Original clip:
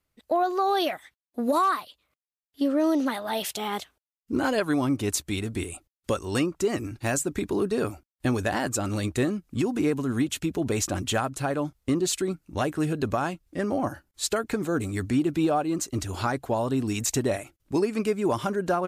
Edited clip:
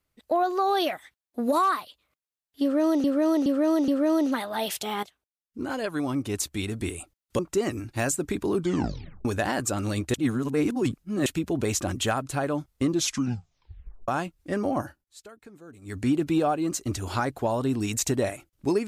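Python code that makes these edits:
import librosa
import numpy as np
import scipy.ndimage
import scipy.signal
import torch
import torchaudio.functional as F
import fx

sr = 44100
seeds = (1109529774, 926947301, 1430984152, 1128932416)

y = fx.edit(x, sr, fx.repeat(start_s=2.62, length_s=0.42, count=4),
    fx.fade_in_from(start_s=3.77, length_s=1.84, floor_db=-13.5),
    fx.cut(start_s=6.13, length_s=0.33),
    fx.tape_stop(start_s=7.61, length_s=0.71),
    fx.reverse_span(start_s=9.21, length_s=1.12),
    fx.tape_stop(start_s=11.95, length_s=1.2),
    fx.fade_down_up(start_s=13.9, length_s=1.24, db=-20.5, fade_s=0.26), tone=tone)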